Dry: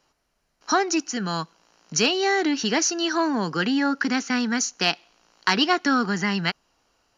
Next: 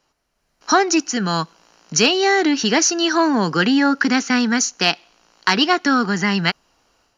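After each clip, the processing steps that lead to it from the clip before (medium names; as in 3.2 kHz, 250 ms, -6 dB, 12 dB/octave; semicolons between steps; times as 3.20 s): level rider gain up to 8 dB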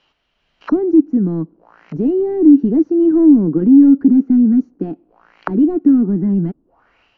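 overload inside the chain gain 16.5 dB; touch-sensitive low-pass 300–3200 Hz down, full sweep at -26.5 dBFS; trim +2 dB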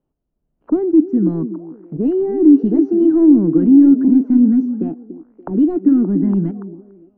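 repeats whose band climbs or falls 287 ms, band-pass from 300 Hz, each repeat 0.7 oct, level -9 dB; level-controlled noise filter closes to 310 Hz, open at -8.5 dBFS; trim -1 dB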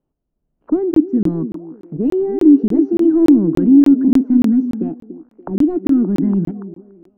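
crackling interface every 0.29 s, samples 1024, zero, from 0.94 s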